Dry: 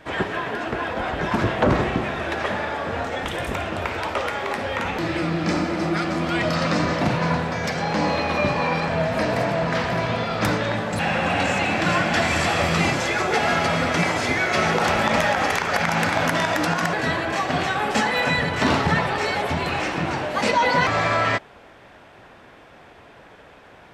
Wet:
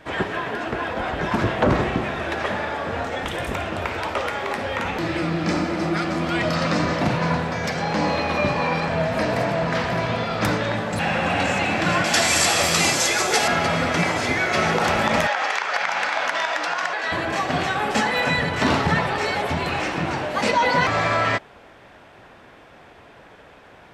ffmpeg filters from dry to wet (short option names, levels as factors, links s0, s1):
-filter_complex "[0:a]asettb=1/sr,asplit=3[s0][s1][s2];[s0]atrim=end=12.044[s3];[s1]atrim=start=12.04:end=13.48,asetpts=PTS-STARTPTS,afade=t=in:d=0.004:c=qsin,afade=t=out:st=1.436:d=0.004:c=qsin,bass=f=250:g=-6,treble=f=4000:g=15[s4];[s2]atrim=start=13.476[s5];[s3][s4]acrossfade=d=0.004:c1=hsin:c2=qsin[s6];[s6][s5]acrossfade=d=0.004:c1=qsin:c2=hsin,asettb=1/sr,asplit=3[s7][s8][s9];[s7]atrim=end=15.274[s10];[s8]atrim=start=15.27:end=17.12,asetpts=PTS-STARTPTS,afade=t=in:d=0.004:c=qsin,afade=t=out:st=1.846:d=0.004:c=qsin,highpass=690,lowpass=6000[s11];[s9]atrim=start=17.116[s12];[s10][s11]acrossfade=d=0.004:c1=hsin:c2=qsin[s13];[s13][s12]acrossfade=d=0.004:c1=qsin:c2=hsin"